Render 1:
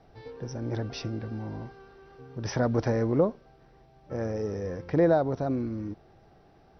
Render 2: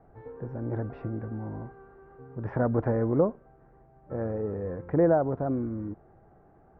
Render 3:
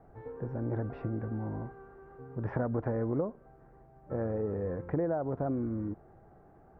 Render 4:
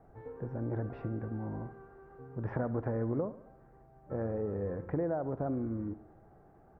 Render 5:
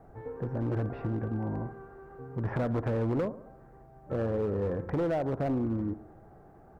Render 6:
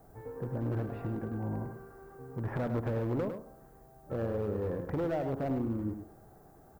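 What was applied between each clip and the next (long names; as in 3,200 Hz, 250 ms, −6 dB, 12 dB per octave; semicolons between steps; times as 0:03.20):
low-pass filter 1,600 Hz 24 dB per octave
downward compressor 6 to 1, threshold −28 dBFS, peak gain reduction 10.5 dB
repeating echo 70 ms, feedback 58%, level −17 dB; level −2 dB
hard clipping −30.5 dBFS, distortion −14 dB; level +5.5 dB
background noise violet −67 dBFS; on a send: single-tap delay 103 ms −8 dB; on the sum: level −3.5 dB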